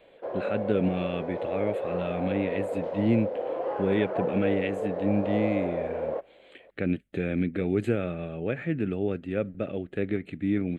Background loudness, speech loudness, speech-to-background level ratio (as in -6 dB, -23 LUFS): -32.0 LUFS, -30.0 LUFS, 2.0 dB